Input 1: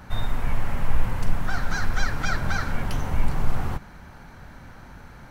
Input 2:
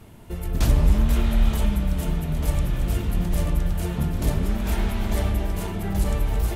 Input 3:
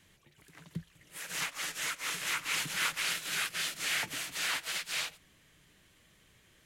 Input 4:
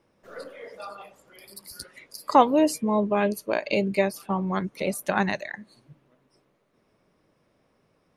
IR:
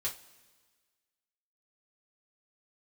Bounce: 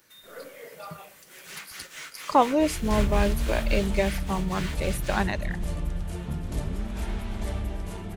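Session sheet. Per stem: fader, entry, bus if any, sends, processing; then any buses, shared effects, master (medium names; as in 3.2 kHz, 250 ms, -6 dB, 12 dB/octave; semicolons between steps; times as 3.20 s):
-4.0 dB, 0.00 s, send -3.5 dB, high-pass 1.5 kHz; differentiator; compression, threshold -50 dBFS, peak gain reduction 13.5 dB
-7.5 dB, 2.30 s, no send, low-pass 11 kHz 24 dB/octave
-9.0 dB, 0.15 s, send -5 dB, median filter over 3 samples
-2.5 dB, 0.00 s, no send, none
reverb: on, pre-delay 3 ms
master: none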